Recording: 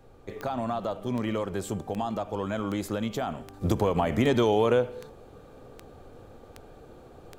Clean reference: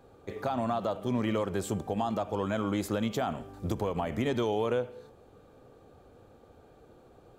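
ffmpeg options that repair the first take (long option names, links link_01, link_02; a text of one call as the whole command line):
ffmpeg -i in.wav -af "adeclick=threshold=4,agate=range=-21dB:threshold=-42dB,asetnsamples=nb_out_samples=441:pad=0,asendcmd='3.61 volume volume -6.5dB',volume=0dB" out.wav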